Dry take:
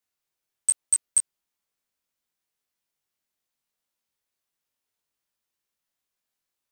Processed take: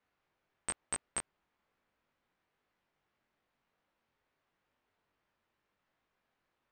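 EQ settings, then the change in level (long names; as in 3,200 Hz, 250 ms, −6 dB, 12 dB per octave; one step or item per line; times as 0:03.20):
low-pass filter 1,900 Hz 12 dB per octave
+11.5 dB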